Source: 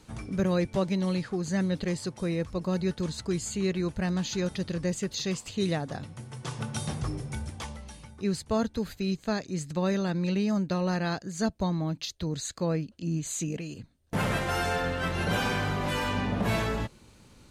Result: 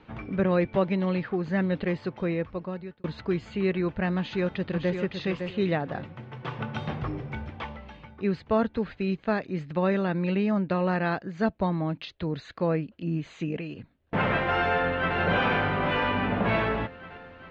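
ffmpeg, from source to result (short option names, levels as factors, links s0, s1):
-filter_complex "[0:a]asplit=2[s0][s1];[s1]afade=t=in:st=4.17:d=0.01,afade=t=out:st=4.96:d=0.01,aecho=0:1:560|1120|1680:0.473151|0.118288|0.029572[s2];[s0][s2]amix=inputs=2:normalize=0,asplit=2[s3][s4];[s4]afade=t=in:st=14.7:d=0.01,afade=t=out:st=15.17:d=0.01,aecho=0:1:400|800|1200|1600|2000|2400|2800|3200|3600|4000|4400|4800:0.562341|0.393639|0.275547|0.192883|0.135018|0.0945127|0.0661589|0.0463112|0.0324179|0.0226925|0.0158848|0.0111193[s5];[s3][s5]amix=inputs=2:normalize=0,asplit=2[s6][s7];[s6]atrim=end=3.04,asetpts=PTS-STARTPTS,afade=t=out:st=2.25:d=0.79[s8];[s7]atrim=start=3.04,asetpts=PTS-STARTPTS,afade=t=in:d=0.004:c=hsin[s9];[s8][s9]concat=n=2:v=0:a=1,lowpass=f=2900:w=0.5412,lowpass=f=2900:w=1.3066,lowshelf=f=180:g=-8.5,volume=1.78"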